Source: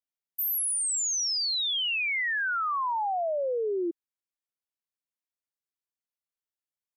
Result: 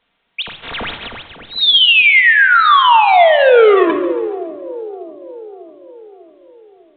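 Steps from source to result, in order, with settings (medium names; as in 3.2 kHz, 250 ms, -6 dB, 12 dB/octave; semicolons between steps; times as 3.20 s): 0.61–1.08 s: waveshaping leveller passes 5; 2.72–3.90 s: high-pass 230 Hz 6 dB/octave; hum notches 50/100/150/200/250/300/350/400 Hz; saturation -39.5 dBFS, distortion -10 dB; on a send: two-band feedback delay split 650 Hz, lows 597 ms, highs 139 ms, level -14 dB; on the sum: simulated room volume 2100 m³, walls furnished, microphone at 1.7 m; loudness maximiser +33.5 dB; trim -1.5 dB; A-law 64 kbps 8 kHz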